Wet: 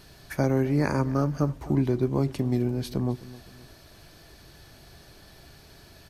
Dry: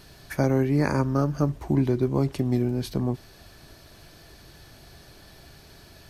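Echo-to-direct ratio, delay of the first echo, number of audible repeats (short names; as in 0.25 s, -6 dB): -18.0 dB, 0.259 s, 2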